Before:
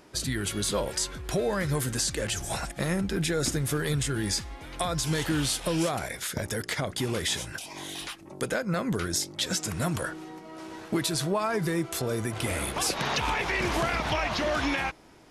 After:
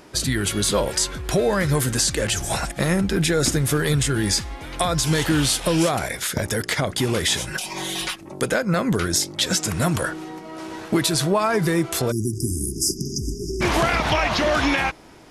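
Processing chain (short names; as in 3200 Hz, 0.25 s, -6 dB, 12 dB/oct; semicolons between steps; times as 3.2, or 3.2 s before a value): 7.47–8.16 comb 5.4 ms, depth 92%; 12.12–13.61 spectral delete 420–4800 Hz; gain +7.5 dB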